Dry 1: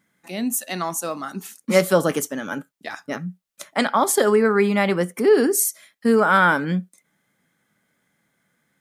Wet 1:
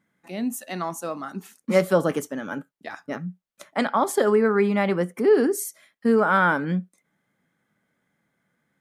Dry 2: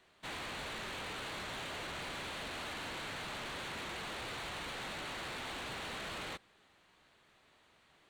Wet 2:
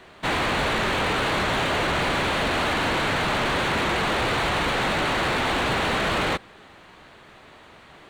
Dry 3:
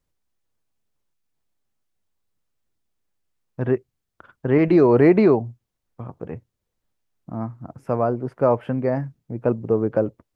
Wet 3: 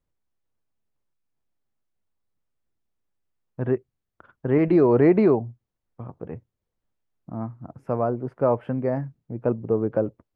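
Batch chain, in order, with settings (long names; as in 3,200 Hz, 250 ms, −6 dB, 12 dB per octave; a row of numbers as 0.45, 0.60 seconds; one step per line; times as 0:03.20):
high-shelf EQ 2,900 Hz −9.5 dB
loudness normalisation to −23 LKFS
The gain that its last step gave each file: −2.0, +21.0, −2.5 decibels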